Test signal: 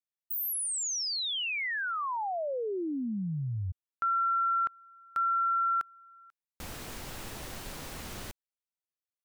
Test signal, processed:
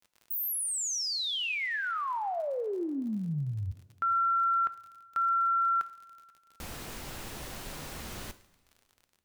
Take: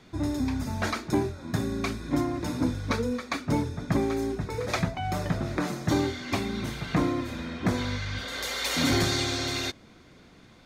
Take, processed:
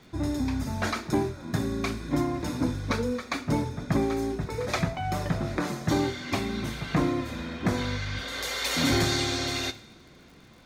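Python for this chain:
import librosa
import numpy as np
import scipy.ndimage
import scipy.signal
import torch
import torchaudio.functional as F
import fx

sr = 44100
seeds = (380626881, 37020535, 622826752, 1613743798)

y = fx.dmg_crackle(x, sr, seeds[0], per_s=50.0, level_db=-45.0)
y = fx.rev_double_slope(y, sr, seeds[1], early_s=0.59, late_s=2.6, knee_db=-18, drr_db=11.5)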